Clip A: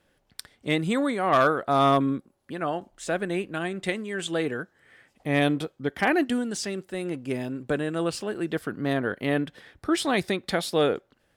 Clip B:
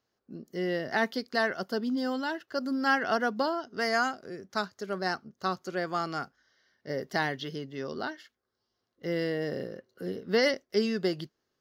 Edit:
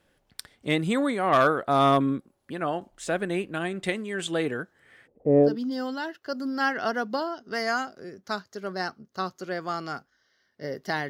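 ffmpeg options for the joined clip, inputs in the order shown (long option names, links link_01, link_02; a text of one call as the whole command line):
ffmpeg -i cue0.wav -i cue1.wav -filter_complex "[0:a]asplit=3[link_01][link_02][link_03];[link_01]afade=type=out:start_time=5.06:duration=0.02[link_04];[link_02]lowpass=frequency=470:width_type=q:width=5.1,afade=type=in:start_time=5.06:duration=0.02,afade=type=out:start_time=5.57:duration=0.02[link_05];[link_03]afade=type=in:start_time=5.57:duration=0.02[link_06];[link_04][link_05][link_06]amix=inputs=3:normalize=0,apad=whole_dur=11.09,atrim=end=11.09,atrim=end=5.57,asetpts=PTS-STARTPTS[link_07];[1:a]atrim=start=1.67:end=7.35,asetpts=PTS-STARTPTS[link_08];[link_07][link_08]acrossfade=duration=0.16:curve1=tri:curve2=tri" out.wav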